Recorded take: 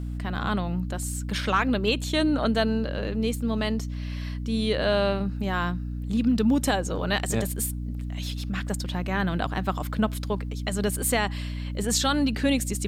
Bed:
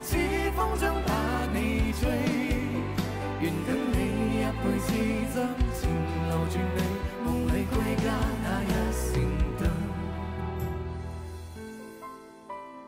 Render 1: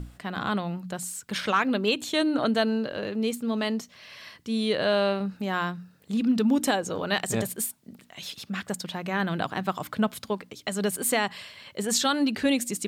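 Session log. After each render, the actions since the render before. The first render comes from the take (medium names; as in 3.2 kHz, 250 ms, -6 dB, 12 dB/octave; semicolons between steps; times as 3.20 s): hum notches 60/120/180/240/300 Hz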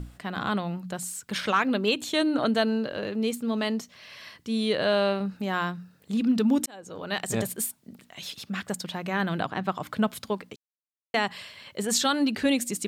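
6.66–7.41 s: fade in; 9.42–9.87 s: treble shelf 6.3 kHz -11.5 dB; 10.56–11.14 s: mute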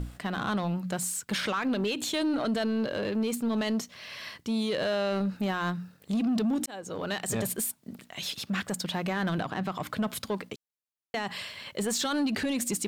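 peak limiter -22.5 dBFS, peak gain reduction 10.5 dB; waveshaping leveller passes 1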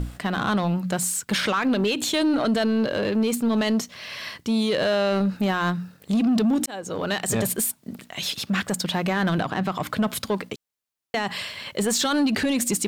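trim +6.5 dB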